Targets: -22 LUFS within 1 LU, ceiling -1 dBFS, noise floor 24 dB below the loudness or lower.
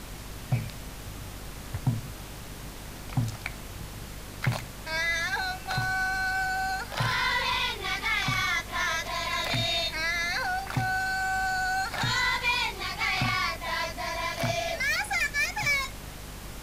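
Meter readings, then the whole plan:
hum 50 Hz; highest harmonic 250 Hz; hum level -42 dBFS; noise floor -42 dBFS; noise floor target -52 dBFS; loudness -28.0 LUFS; peak level -15.0 dBFS; loudness target -22.0 LUFS
-> de-hum 50 Hz, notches 5; noise print and reduce 10 dB; trim +6 dB

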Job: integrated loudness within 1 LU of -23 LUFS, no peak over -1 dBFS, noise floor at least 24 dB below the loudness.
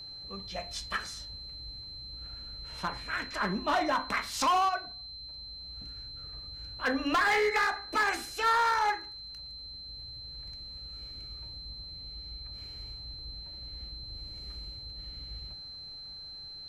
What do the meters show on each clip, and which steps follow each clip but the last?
clipped samples 1.1%; clipping level -22.0 dBFS; steady tone 4.1 kHz; tone level -42 dBFS; loudness -33.5 LUFS; peak level -22.0 dBFS; loudness target -23.0 LUFS
-> clip repair -22 dBFS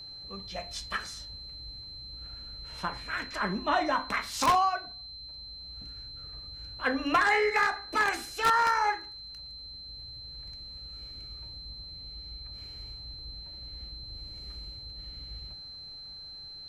clipped samples 0.0%; steady tone 4.1 kHz; tone level -42 dBFS
-> band-stop 4.1 kHz, Q 30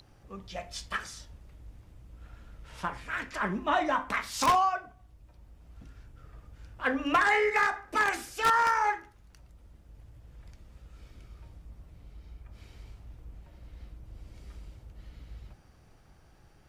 steady tone not found; loudness -28.0 LUFS; peak level -12.5 dBFS; loudness target -23.0 LUFS
-> trim +5 dB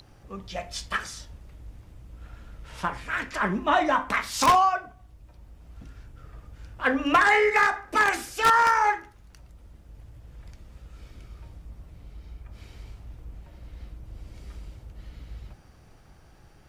loudness -23.0 LUFS; peak level -7.5 dBFS; noise floor -53 dBFS

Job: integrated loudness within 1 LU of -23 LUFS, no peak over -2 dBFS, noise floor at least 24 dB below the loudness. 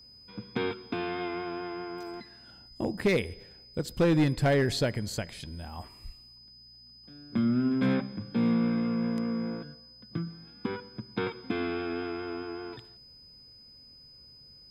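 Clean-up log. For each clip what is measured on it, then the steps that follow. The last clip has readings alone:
clipped samples 0.4%; clipping level -18.5 dBFS; steady tone 5 kHz; tone level -51 dBFS; loudness -31.0 LUFS; peak level -18.5 dBFS; loudness target -23.0 LUFS
-> clip repair -18.5 dBFS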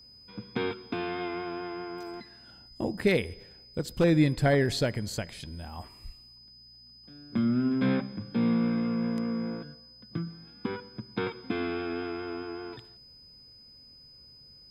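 clipped samples 0.0%; steady tone 5 kHz; tone level -51 dBFS
-> band-stop 5 kHz, Q 30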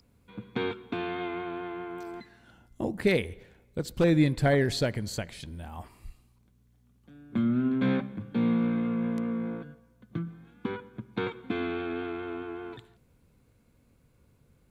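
steady tone not found; loudness -30.5 LUFS; peak level -11.5 dBFS; loudness target -23.0 LUFS
-> trim +7.5 dB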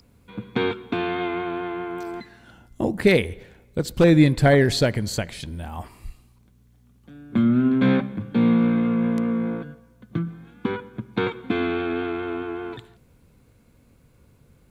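loudness -23.0 LUFS; peak level -4.0 dBFS; noise floor -57 dBFS

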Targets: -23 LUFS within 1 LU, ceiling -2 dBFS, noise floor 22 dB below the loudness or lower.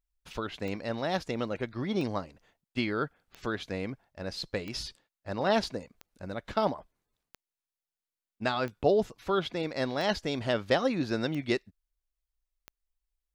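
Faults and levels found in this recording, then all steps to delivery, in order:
clicks found 10; loudness -32.0 LUFS; peak level -12.5 dBFS; loudness target -23.0 LUFS
-> de-click; trim +9 dB

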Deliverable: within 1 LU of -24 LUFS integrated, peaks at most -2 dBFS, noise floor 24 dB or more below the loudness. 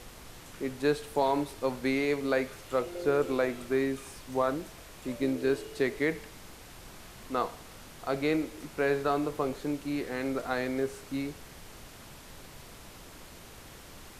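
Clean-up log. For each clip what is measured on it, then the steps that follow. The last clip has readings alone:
noise floor -49 dBFS; noise floor target -56 dBFS; loudness -31.5 LUFS; peak level -15.5 dBFS; loudness target -24.0 LUFS
-> noise print and reduce 7 dB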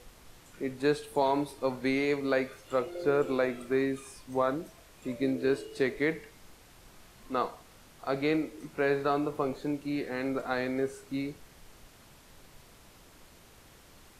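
noise floor -56 dBFS; loudness -31.5 LUFS; peak level -15.5 dBFS; loudness target -24.0 LUFS
-> trim +7.5 dB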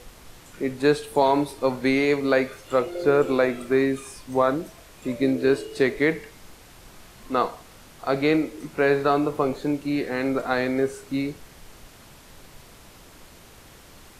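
loudness -24.0 LUFS; peak level -8.0 dBFS; noise floor -49 dBFS

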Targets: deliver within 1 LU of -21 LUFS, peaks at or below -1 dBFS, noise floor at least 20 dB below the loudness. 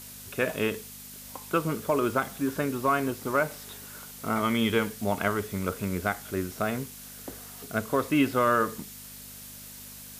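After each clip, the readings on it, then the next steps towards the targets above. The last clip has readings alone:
hum 50 Hz; highest harmonic 250 Hz; hum level -50 dBFS; noise floor -45 dBFS; noise floor target -48 dBFS; loudness -28.0 LUFS; peak level -10.0 dBFS; loudness target -21.0 LUFS
-> de-hum 50 Hz, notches 5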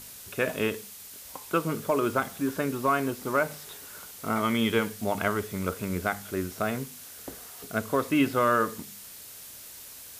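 hum not found; noise floor -45 dBFS; noise floor target -49 dBFS
-> noise reduction 6 dB, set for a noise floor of -45 dBFS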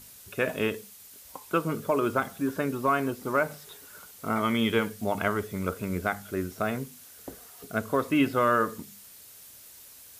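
noise floor -50 dBFS; loudness -28.5 LUFS; peak level -10.0 dBFS; loudness target -21.0 LUFS
-> trim +7.5 dB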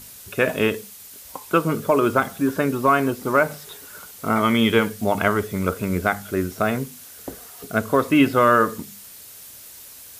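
loudness -21.0 LUFS; peak level -2.5 dBFS; noise floor -43 dBFS

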